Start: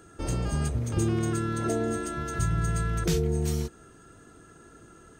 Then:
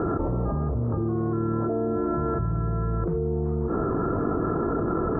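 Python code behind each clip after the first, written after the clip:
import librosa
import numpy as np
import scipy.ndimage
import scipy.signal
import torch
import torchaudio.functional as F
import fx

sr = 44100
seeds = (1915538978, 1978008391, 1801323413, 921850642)

y = scipy.signal.sosfilt(scipy.signal.cheby1(4, 1.0, 1200.0, 'lowpass', fs=sr, output='sos'), x)
y = fx.low_shelf(y, sr, hz=150.0, db=-5.0)
y = fx.env_flatten(y, sr, amount_pct=100)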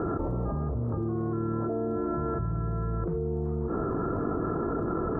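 y = fx.dmg_crackle(x, sr, seeds[0], per_s=12.0, level_db=-52.0)
y = F.gain(torch.from_numpy(y), -4.0).numpy()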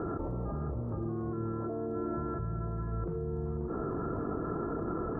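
y = x + 10.0 ** (-10.5 / 20.0) * np.pad(x, (int(533 * sr / 1000.0), 0))[:len(x)]
y = F.gain(torch.from_numpy(y), -5.5).numpy()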